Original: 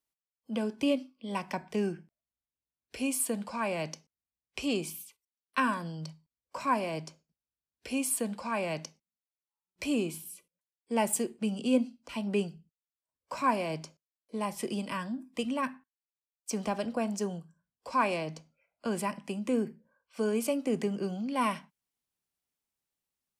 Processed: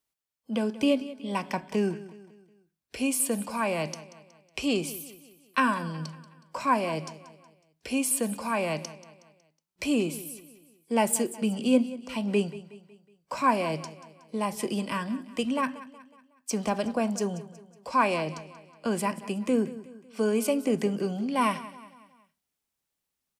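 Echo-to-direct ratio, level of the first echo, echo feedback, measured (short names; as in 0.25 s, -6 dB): -15.5 dB, -16.5 dB, 46%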